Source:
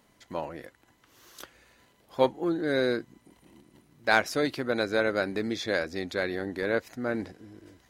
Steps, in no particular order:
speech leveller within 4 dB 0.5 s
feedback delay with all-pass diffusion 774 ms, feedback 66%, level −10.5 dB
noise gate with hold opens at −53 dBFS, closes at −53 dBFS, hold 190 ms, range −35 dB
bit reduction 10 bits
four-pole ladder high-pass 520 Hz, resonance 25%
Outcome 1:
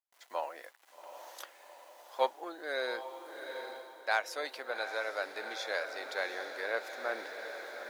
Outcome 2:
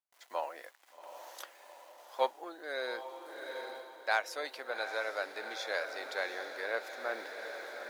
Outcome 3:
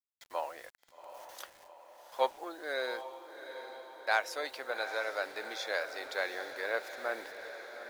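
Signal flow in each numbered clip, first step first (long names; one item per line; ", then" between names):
feedback delay with all-pass diffusion, then bit reduction, then four-pole ladder high-pass, then speech leveller, then noise gate with hold
bit reduction, then feedback delay with all-pass diffusion, then speech leveller, then four-pole ladder high-pass, then noise gate with hold
four-pole ladder high-pass, then bit reduction, then noise gate with hold, then speech leveller, then feedback delay with all-pass diffusion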